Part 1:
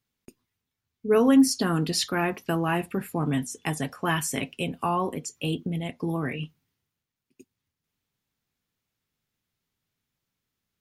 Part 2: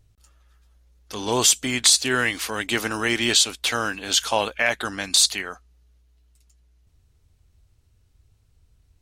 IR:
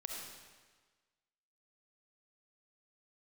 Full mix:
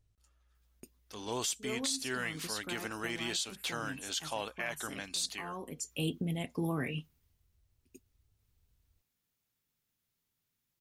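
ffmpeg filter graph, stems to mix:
-filter_complex "[0:a]highshelf=f=6700:g=9.5,adelay=550,volume=0.562[s0];[1:a]volume=0.211,asplit=2[s1][s2];[s2]apad=whole_len=500927[s3];[s0][s3]sidechaincompress=threshold=0.00501:ratio=8:attack=16:release=521[s4];[s4][s1]amix=inputs=2:normalize=0,alimiter=limit=0.0631:level=0:latency=1:release=72"

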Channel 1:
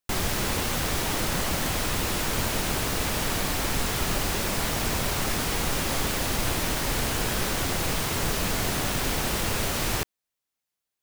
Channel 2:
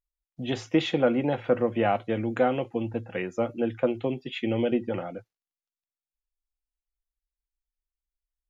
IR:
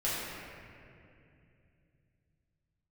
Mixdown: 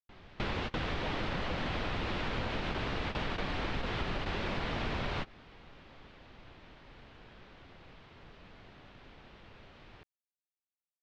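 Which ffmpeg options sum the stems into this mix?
-filter_complex "[0:a]lowpass=f=3700:w=0.5412,lowpass=f=3700:w=1.3066,volume=0.841[s0];[1:a]highpass=f=91:p=1,lowshelf=f=150:g=-5.5,volume=0.112,asplit=2[s1][s2];[s2]apad=whole_len=486168[s3];[s0][s3]sidechaingate=range=0.0562:threshold=0.001:ratio=16:detection=peak[s4];[s4][s1]amix=inputs=2:normalize=0,acompressor=threshold=0.0282:ratio=6"

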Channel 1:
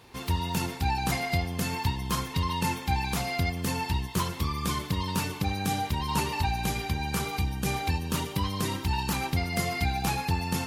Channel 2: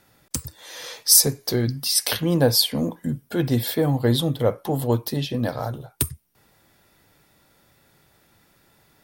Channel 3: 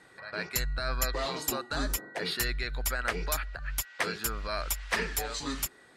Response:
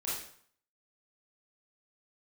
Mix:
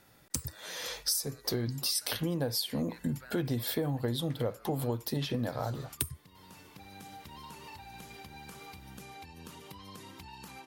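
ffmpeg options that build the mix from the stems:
-filter_complex "[0:a]acompressor=threshold=0.0398:ratio=6,adelay=1350,volume=0.422[s0];[1:a]volume=0.75,asplit=2[s1][s2];[2:a]adelay=300,volume=0.2[s3];[s2]apad=whole_len=530073[s4];[s0][s4]sidechaincompress=threshold=0.0112:ratio=12:attack=31:release=1120[s5];[s5][s3]amix=inputs=2:normalize=0,highpass=f=170:p=1,acompressor=threshold=0.00562:ratio=6,volume=1[s6];[s1][s6]amix=inputs=2:normalize=0,acompressor=threshold=0.0398:ratio=16"

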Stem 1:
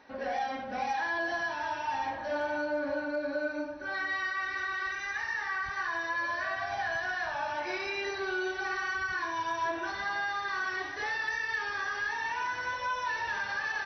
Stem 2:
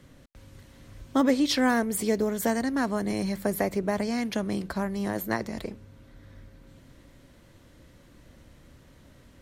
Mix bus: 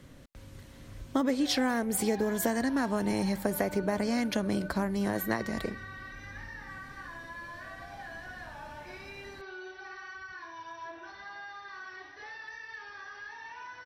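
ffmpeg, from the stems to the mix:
-filter_complex "[0:a]adelay=1200,volume=0.266[s0];[1:a]acompressor=threshold=0.0501:ratio=4,volume=1.12[s1];[s0][s1]amix=inputs=2:normalize=0"

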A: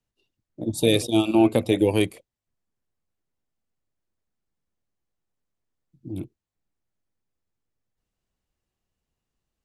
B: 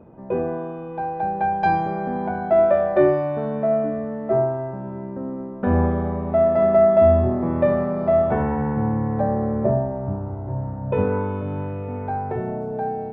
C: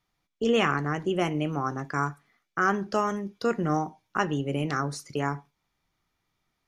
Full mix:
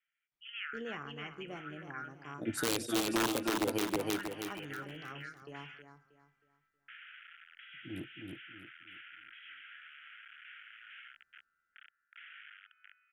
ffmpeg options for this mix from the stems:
-filter_complex "[0:a]adynamicequalizer=threshold=0.0282:dfrequency=290:dqfactor=2.6:tfrequency=290:tqfactor=2.6:attack=5:release=100:ratio=0.375:range=2.5:mode=boostabove:tftype=bell,aeval=exprs='(mod(2.51*val(0)+1,2)-1)/2.51':c=same,lowshelf=f=110:g=-12,adelay=1800,volume=0.398,asplit=2[s0][s1];[s1]volume=0.631[s2];[1:a]aeval=exprs='(mod(10*val(0)+1,2)-1)/10':c=same,adelay=1250,volume=0.106[s3];[2:a]acrossover=split=5400[s4][s5];[s5]acompressor=threshold=0.00126:ratio=4:attack=1:release=60[s6];[s4][s6]amix=inputs=2:normalize=0,volume=0.668,asplit=2[s7][s8];[s8]volume=0.158[s9];[s3][s7]amix=inputs=2:normalize=0,asuperpass=centerf=2100:order=20:qfactor=1.1,acompressor=threshold=0.002:ratio=1.5,volume=1[s10];[s2][s9]amix=inputs=2:normalize=0,aecho=0:1:317|634|951|1268|1585:1|0.33|0.109|0.0359|0.0119[s11];[s0][s10][s11]amix=inputs=3:normalize=0,alimiter=limit=0.0841:level=0:latency=1:release=270"

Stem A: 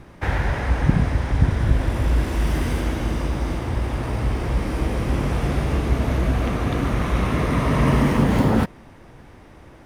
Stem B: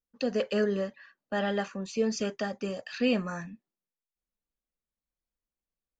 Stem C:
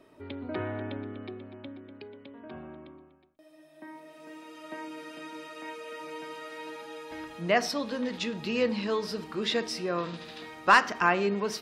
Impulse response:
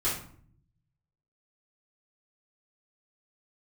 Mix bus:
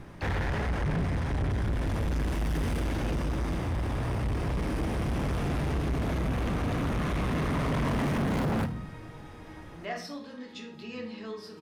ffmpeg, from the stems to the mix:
-filter_complex "[0:a]equalizer=f=170:t=o:w=0.43:g=5,volume=0.708,asplit=2[s0][s1];[s1]volume=0.0891[s2];[1:a]volume=0.266[s3];[2:a]adelay=2350,volume=0.188,asplit=2[s4][s5];[s5]volume=0.473[s6];[3:a]atrim=start_sample=2205[s7];[s2][s6]amix=inputs=2:normalize=0[s8];[s8][s7]afir=irnorm=-1:irlink=0[s9];[s0][s3][s4][s9]amix=inputs=4:normalize=0,asoftclip=type=tanh:threshold=0.0531"

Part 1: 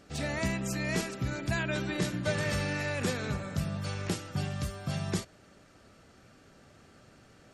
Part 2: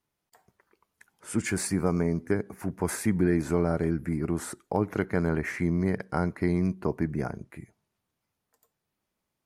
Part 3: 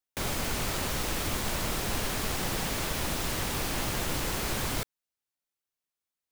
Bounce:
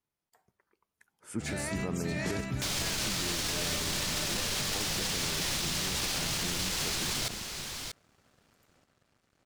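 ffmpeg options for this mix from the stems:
-filter_complex "[0:a]aeval=exprs='sgn(val(0))*max(abs(val(0))-0.0015,0)':c=same,adelay=1300,volume=0.75,asplit=2[s0][s1];[s1]volume=0.668[s2];[1:a]volume=0.422[s3];[2:a]equalizer=f=4900:w=0.46:g=13.5,adelay=2450,volume=1.06,asplit=2[s4][s5];[s5]volume=0.178[s6];[s2][s6]amix=inputs=2:normalize=0,aecho=0:1:636:1[s7];[s0][s3][s4][s7]amix=inputs=4:normalize=0,alimiter=limit=0.0708:level=0:latency=1:release=41"

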